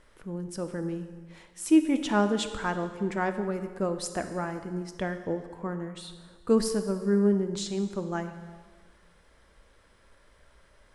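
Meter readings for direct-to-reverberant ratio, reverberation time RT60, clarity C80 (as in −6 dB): 8.0 dB, 1.5 s, 11.0 dB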